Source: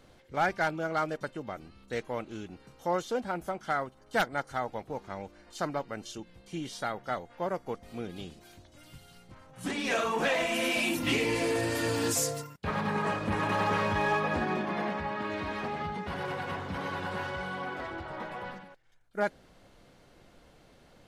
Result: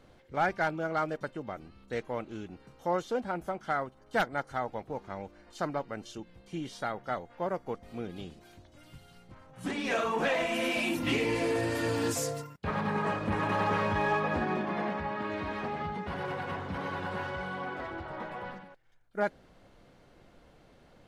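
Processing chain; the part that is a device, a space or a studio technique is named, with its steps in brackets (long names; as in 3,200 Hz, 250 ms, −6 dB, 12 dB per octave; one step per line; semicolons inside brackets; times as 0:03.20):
behind a face mask (high-shelf EQ 3,500 Hz −7 dB)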